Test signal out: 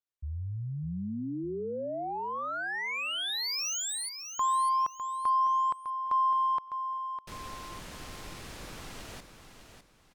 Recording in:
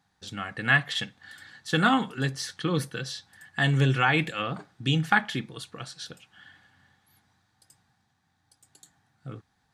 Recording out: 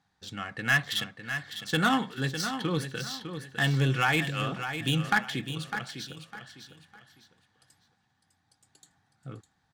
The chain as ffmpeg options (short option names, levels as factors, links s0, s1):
-filter_complex "[0:a]adynamicsmooth=sensitivity=3:basefreq=4700,aemphasis=mode=production:type=50fm,asoftclip=type=tanh:threshold=0.299,asplit=2[s0][s1];[s1]aecho=0:1:604|1208|1812:0.355|0.106|0.0319[s2];[s0][s2]amix=inputs=2:normalize=0,volume=0.794"